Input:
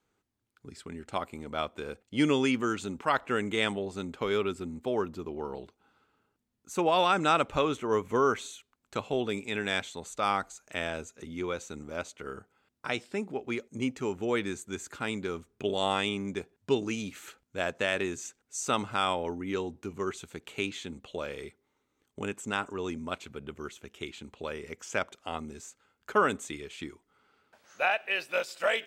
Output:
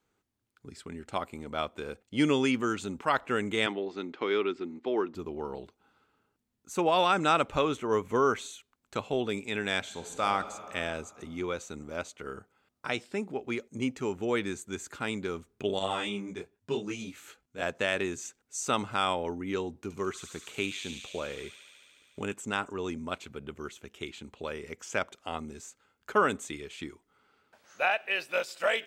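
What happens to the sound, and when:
3.66–5.15 speaker cabinet 270–5000 Hz, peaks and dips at 330 Hz +8 dB, 560 Hz -5 dB, 2000 Hz +4 dB
9.79–10.26 reverb throw, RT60 2.7 s, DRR 5 dB
15.79–17.62 detuned doubles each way 24 cents
19.8–22.34 thin delay 72 ms, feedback 83%, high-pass 3200 Hz, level -3.5 dB

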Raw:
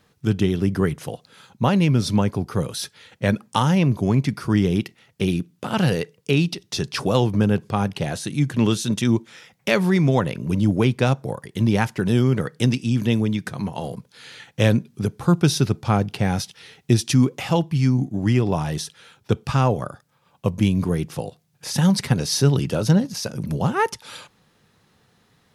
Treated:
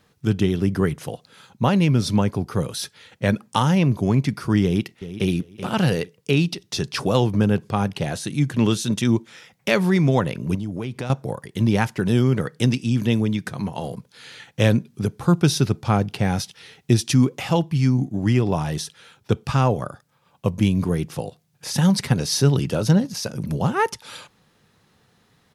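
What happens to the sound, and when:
4.63–5.32 echo throw 0.38 s, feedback 25%, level -13 dB
10.55–11.1 compressor 5:1, threshold -25 dBFS

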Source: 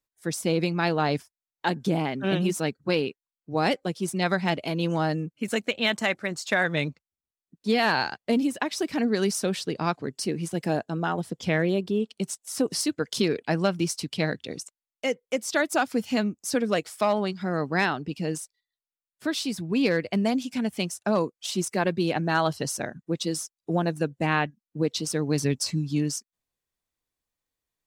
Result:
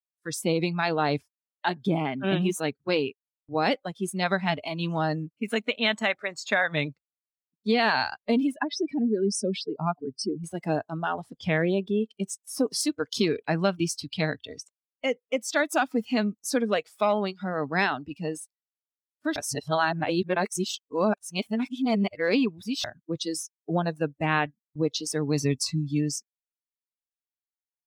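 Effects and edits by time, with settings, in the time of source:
8.54–10.44 spectral contrast raised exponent 1.9
19.36–22.84 reverse
whole clip: gate -47 dBFS, range -15 dB; spectral noise reduction 14 dB

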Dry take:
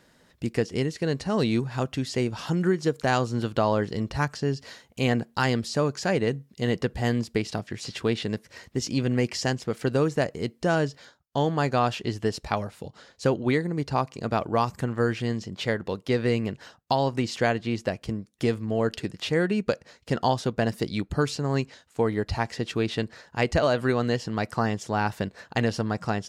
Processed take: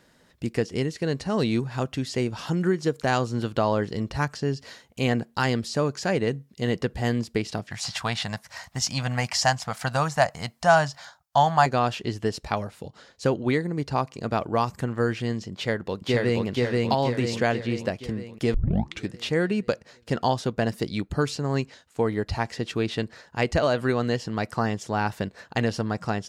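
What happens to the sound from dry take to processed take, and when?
7.71–11.66 EQ curve 160 Hz 0 dB, 410 Hz -18 dB, 710 Hz +12 dB, 2700 Hz +3 dB, 5400 Hz +7 dB
15.53–16.46 echo throw 0.48 s, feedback 55%, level -0.5 dB
18.54 tape start 0.53 s

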